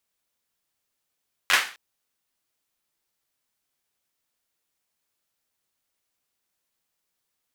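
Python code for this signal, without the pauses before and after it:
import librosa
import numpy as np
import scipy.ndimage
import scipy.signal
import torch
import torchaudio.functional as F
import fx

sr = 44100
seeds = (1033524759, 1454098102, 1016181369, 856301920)

y = fx.drum_clap(sr, seeds[0], length_s=0.26, bursts=4, spacing_ms=11, hz=1800.0, decay_s=0.38)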